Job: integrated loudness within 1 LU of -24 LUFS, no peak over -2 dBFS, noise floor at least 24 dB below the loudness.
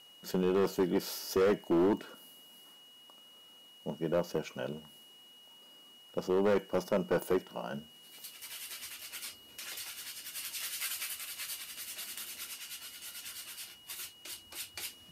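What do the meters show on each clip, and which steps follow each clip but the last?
clipped 1.3%; flat tops at -23.0 dBFS; steady tone 2900 Hz; tone level -55 dBFS; loudness -35.5 LUFS; peak -23.0 dBFS; loudness target -24.0 LUFS
-> clip repair -23 dBFS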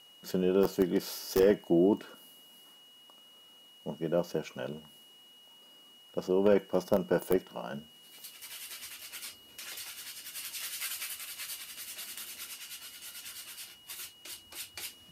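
clipped 0.0%; steady tone 2900 Hz; tone level -55 dBFS
-> notch 2900 Hz, Q 30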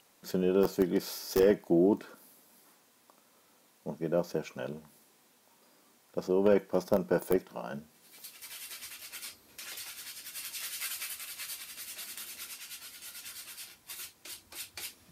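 steady tone none; loudness -33.0 LUFS; peak -14.0 dBFS; loudness target -24.0 LUFS
-> gain +9 dB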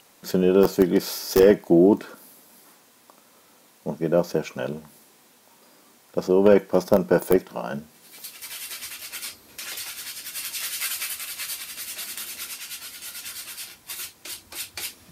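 loudness -24.0 LUFS; peak -5.0 dBFS; noise floor -56 dBFS

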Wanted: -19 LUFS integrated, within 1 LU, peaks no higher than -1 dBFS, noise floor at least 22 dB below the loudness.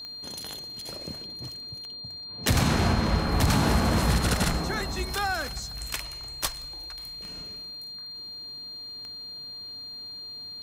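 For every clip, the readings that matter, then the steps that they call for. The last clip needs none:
clicks 6; steady tone 4200 Hz; tone level -37 dBFS; loudness -29.5 LUFS; peak -11.5 dBFS; loudness target -19.0 LUFS
-> de-click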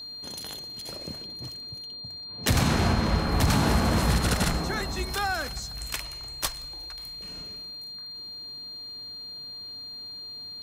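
clicks 0; steady tone 4200 Hz; tone level -37 dBFS
-> notch 4200 Hz, Q 30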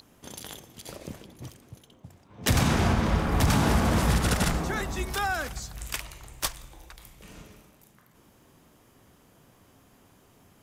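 steady tone none; loudness -26.5 LUFS; peak -11.5 dBFS; loudness target -19.0 LUFS
-> gain +7.5 dB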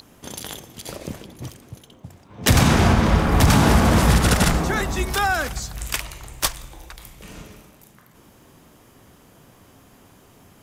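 loudness -19.0 LUFS; peak -4.0 dBFS; noise floor -52 dBFS

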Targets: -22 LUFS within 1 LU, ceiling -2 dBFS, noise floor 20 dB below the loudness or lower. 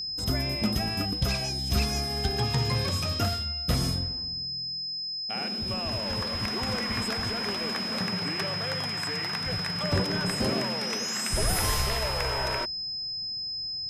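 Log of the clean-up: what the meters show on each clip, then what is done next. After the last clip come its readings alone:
ticks 42/s; steady tone 5100 Hz; tone level -31 dBFS; loudness -28.0 LUFS; peak -14.0 dBFS; loudness target -22.0 LUFS
-> de-click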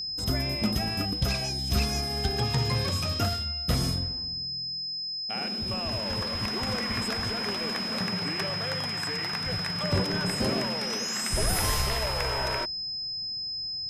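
ticks 0.072/s; steady tone 5100 Hz; tone level -31 dBFS
-> notch 5100 Hz, Q 30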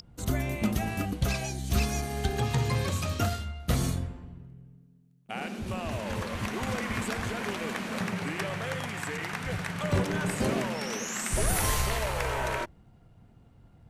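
steady tone none; loudness -31.0 LUFS; peak -15.0 dBFS; loudness target -22.0 LUFS
-> gain +9 dB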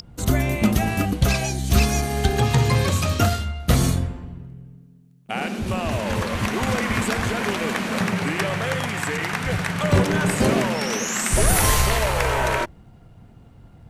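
loudness -22.0 LUFS; peak -6.0 dBFS; noise floor -49 dBFS

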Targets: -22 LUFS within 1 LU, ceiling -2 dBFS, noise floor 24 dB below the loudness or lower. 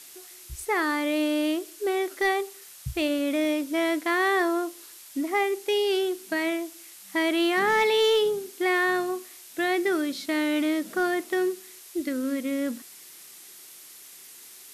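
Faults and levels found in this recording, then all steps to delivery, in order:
clipped 0.3%; flat tops at -17.0 dBFS; noise floor -47 dBFS; noise floor target -50 dBFS; loudness -26.0 LUFS; peak -17.0 dBFS; loudness target -22.0 LUFS
-> clip repair -17 dBFS; denoiser 6 dB, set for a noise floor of -47 dBFS; gain +4 dB

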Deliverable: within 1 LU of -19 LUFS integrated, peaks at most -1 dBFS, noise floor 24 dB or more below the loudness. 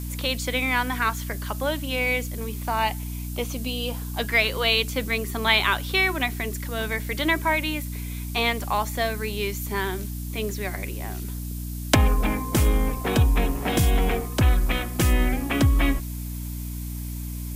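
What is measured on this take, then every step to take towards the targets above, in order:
hum 60 Hz; harmonics up to 300 Hz; hum level -29 dBFS; noise floor -32 dBFS; noise floor target -49 dBFS; loudness -25.0 LUFS; peak -3.5 dBFS; loudness target -19.0 LUFS
-> de-hum 60 Hz, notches 5; denoiser 17 dB, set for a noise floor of -32 dBFS; gain +6 dB; limiter -1 dBFS

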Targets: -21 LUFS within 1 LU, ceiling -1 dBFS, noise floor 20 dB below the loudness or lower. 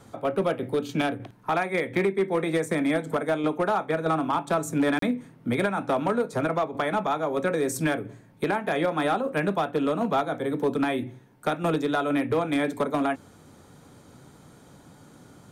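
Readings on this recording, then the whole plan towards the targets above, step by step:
clipped 1.0%; flat tops at -17.5 dBFS; dropouts 1; longest dropout 33 ms; loudness -26.5 LUFS; peak -17.5 dBFS; loudness target -21.0 LUFS
-> clip repair -17.5 dBFS; interpolate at 4.99, 33 ms; gain +5.5 dB

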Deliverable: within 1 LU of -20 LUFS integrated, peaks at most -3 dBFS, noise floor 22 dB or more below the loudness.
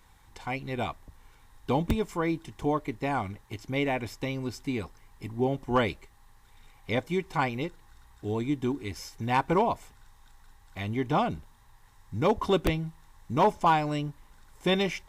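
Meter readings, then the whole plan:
loudness -29.5 LUFS; peak -14.0 dBFS; loudness target -20.0 LUFS
-> gain +9.5 dB

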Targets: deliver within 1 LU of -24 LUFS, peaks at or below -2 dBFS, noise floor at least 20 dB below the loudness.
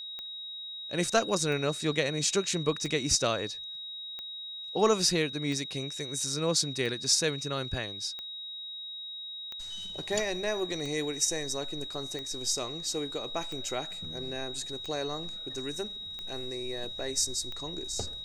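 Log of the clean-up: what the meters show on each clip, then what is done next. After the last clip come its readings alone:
clicks 14; steady tone 3800 Hz; tone level -38 dBFS; loudness -31.0 LUFS; peak -12.0 dBFS; loudness target -24.0 LUFS
-> de-click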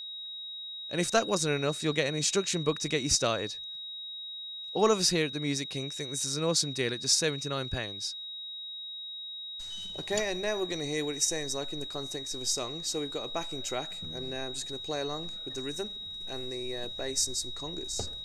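clicks 0; steady tone 3800 Hz; tone level -38 dBFS
-> notch 3800 Hz, Q 30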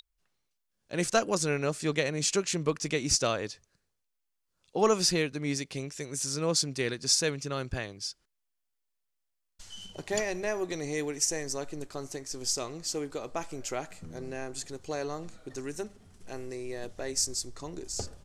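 steady tone none; loudness -31.0 LUFS; peak -12.5 dBFS; loudness target -24.0 LUFS
-> gain +7 dB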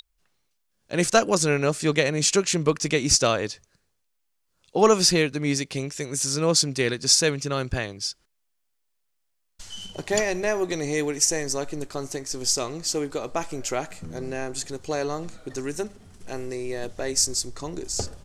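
loudness -24.0 LUFS; peak -5.5 dBFS; noise floor -74 dBFS

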